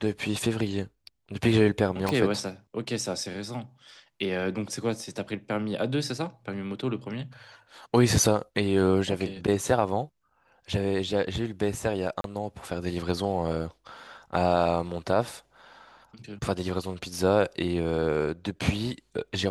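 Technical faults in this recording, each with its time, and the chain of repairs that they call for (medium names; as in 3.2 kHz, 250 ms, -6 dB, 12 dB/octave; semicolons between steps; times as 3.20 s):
2.09 s: pop -13 dBFS
12.21–12.24 s: dropout 32 ms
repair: de-click; interpolate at 12.21 s, 32 ms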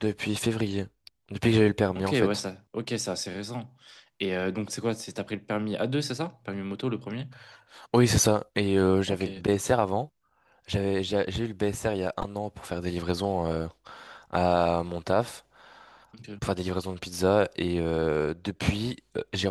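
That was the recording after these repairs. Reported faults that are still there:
2.09 s: pop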